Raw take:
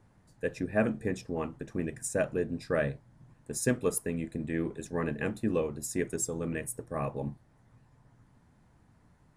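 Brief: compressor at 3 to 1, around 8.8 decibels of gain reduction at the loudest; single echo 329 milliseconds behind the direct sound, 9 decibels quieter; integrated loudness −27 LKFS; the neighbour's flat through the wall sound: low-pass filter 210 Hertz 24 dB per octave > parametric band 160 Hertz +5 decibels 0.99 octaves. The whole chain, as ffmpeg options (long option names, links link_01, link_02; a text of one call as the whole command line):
ffmpeg -i in.wav -af "acompressor=threshold=-34dB:ratio=3,lowpass=frequency=210:width=0.5412,lowpass=frequency=210:width=1.3066,equalizer=frequency=160:width_type=o:width=0.99:gain=5,aecho=1:1:329:0.355,volume=15dB" out.wav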